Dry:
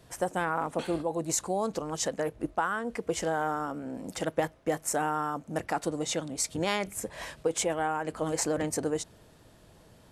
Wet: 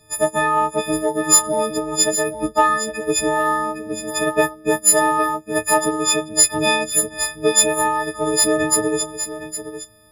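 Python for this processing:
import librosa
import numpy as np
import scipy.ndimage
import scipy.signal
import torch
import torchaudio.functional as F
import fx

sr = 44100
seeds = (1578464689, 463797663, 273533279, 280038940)

p1 = fx.freq_snap(x, sr, grid_st=6)
p2 = fx.low_shelf(p1, sr, hz=200.0, db=7.5)
p3 = 10.0 ** (-17.5 / 20.0) * np.tanh(p2 / 10.0 ** (-17.5 / 20.0))
p4 = p2 + (p3 * librosa.db_to_amplitude(-4.5))
p5 = fx.doubler(p4, sr, ms=16.0, db=-8)
p6 = p5 + fx.echo_single(p5, sr, ms=813, db=-7.5, dry=0)
p7 = fx.upward_expand(p6, sr, threshold_db=-37.0, expansion=1.5)
y = p7 * librosa.db_to_amplitude(4.0)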